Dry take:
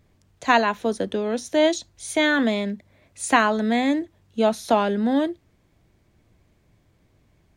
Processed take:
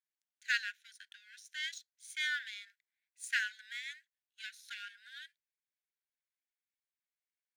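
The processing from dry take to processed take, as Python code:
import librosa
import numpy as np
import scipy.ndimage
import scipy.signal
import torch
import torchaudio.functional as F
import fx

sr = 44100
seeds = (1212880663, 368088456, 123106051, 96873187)

y = fx.power_curve(x, sr, exponent=1.4)
y = fx.brickwall_highpass(y, sr, low_hz=1400.0)
y = y * 10.0 ** (-7.5 / 20.0)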